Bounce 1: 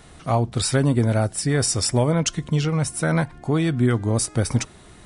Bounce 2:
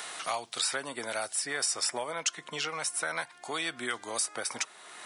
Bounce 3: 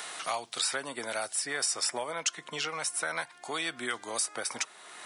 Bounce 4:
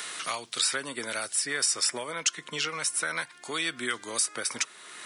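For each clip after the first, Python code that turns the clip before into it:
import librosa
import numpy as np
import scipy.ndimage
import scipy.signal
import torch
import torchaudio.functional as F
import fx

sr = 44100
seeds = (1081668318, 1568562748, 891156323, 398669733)

y1 = scipy.signal.sosfilt(scipy.signal.butter(2, 890.0, 'highpass', fs=sr, output='sos'), x)
y1 = fx.band_squash(y1, sr, depth_pct=70)
y1 = y1 * 10.0 ** (-4.0 / 20.0)
y2 = scipy.signal.sosfilt(scipy.signal.butter(2, 88.0, 'highpass', fs=sr, output='sos'), y1)
y3 = fx.peak_eq(y2, sr, hz=750.0, db=-11.0, octaves=0.73)
y3 = y3 * 10.0 ** (4.0 / 20.0)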